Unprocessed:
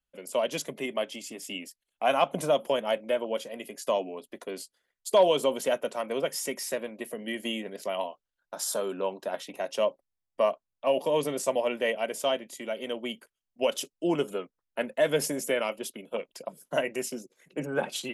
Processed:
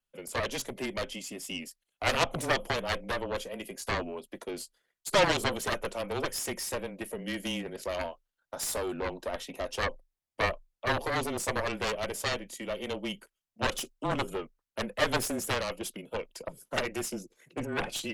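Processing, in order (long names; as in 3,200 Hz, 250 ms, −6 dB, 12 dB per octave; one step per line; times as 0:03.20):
pitch vibrato 1.5 Hz 13 cents
harmonic generator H 6 −13 dB, 7 −7 dB, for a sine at −10.5 dBFS
frequency shifter −23 Hz
level −6 dB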